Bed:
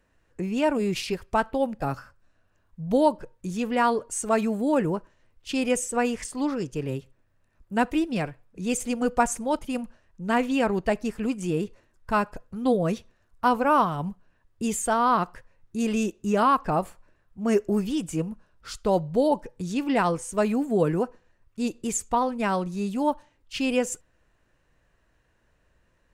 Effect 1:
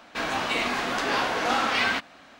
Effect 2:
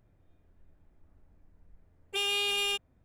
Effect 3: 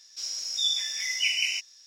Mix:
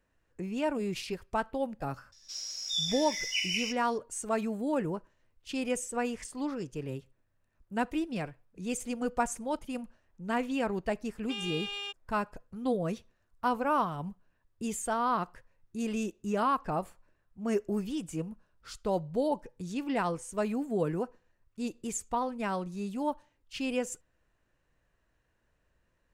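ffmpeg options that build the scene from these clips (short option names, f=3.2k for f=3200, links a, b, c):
-filter_complex "[0:a]volume=-7.5dB[a];[2:a]highpass=420,lowpass=5k[b];[3:a]atrim=end=1.86,asetpts=PTS-STARTPTS,volume=-5.5dB,afade=t=in:d=0.004:c=hsin,afade=t=out:st=1.856:d=0.004:c=hsin,adelay=2120[c];[b]atrim=end=3.04,asetpts=PTS-STARTPTS,volume=-7.5dB,afade=t=in:d=0.004:c=hsin,afade=t=out:st=3.036:d=0.004:c=hsin,adelay=9150[d];[a][c][d]amix=inputs=3:normalize=0"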